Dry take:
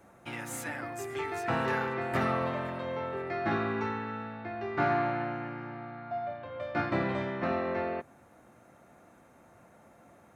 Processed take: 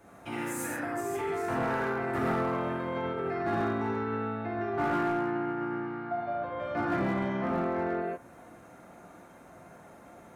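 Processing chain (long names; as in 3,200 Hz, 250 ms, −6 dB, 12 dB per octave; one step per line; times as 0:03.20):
reverb whose tail is shaped and stops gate 180 ms flat, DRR −5 dB
hard clipping −19 dBFS, distortion −17 dB
brickwall limiter −23.5 dBFS, peak gain reduction 4.5 dB
dynamic equaliser 3,900 Hz, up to −7 dB, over −51 dBFS, Q 0.73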